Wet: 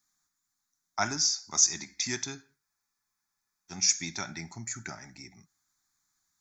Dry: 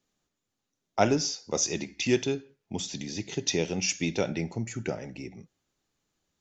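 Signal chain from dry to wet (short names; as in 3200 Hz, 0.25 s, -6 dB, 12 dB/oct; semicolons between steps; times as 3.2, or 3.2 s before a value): tilt shelf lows -9 dB; fixed phaser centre 1200 Hz, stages 4; spectral freeze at 2.65, 1.06 s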